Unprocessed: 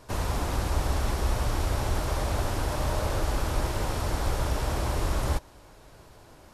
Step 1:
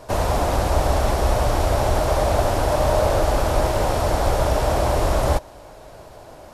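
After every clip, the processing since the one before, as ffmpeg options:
ffmpeg -i in.wav -af "equalizer=frequency=640:width_type=o:width=0.87:gain=10,volume=6dB" out.wav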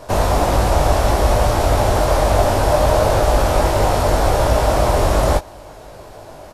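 ffmpeg -i in.wav -filter_complex "[0:a]asplit=2[link_01][link_02];[link_02]adelay=20,volume=-5.5dB[link_03];[link_01][link_03]amix=inputs=2:normalize=0,volume=3.5dB" out.wav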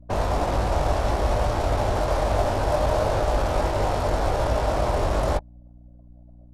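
ffmpeg -i in.wav -af "anlmdn=1000,aeval=exprs='val(0)+0.0112*(sin(2*PI*60*n/s)+sin(2*PI*2*60*n/s)/2+sin(2*PI*3*60*n/s)/3+sin(2*PI*4*60*n/s)/4+sin(2*PI*5*60*n/s)/5)':channel_layout=same,volume=-7.5dB" out.wav

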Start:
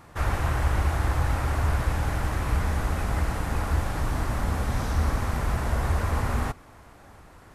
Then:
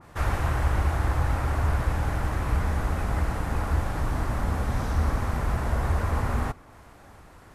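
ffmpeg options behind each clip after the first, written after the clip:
ffmpeg -i in.wav -af "adynamicequalizer=threshold=0.00355:dfrequency=2100:dqfactor=0.7:tfrequency=2100:tqfactor=0.7:attack=5:release=100:ratio=0.375:range=2:mode=cutabove:tftype=highshelf" out.wav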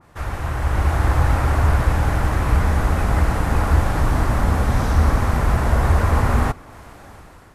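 ffmpeg -i in.wav -af "dynaudnorm=framelen=300:gausssize=5:maxgain=11.5dB,volume=-1.5dB" out.wav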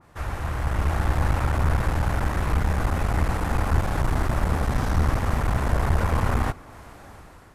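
ffmpeg -i in.wav -af "aeval=exprs='clip(val(0),-1,0.0794)':channel_layout=same,volume=-3dB" out.wav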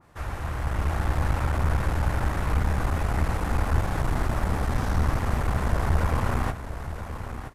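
ffmpeg -i in.wav -af "aecho=1:1:974:0.316,volume=-2.5dB" out.wav

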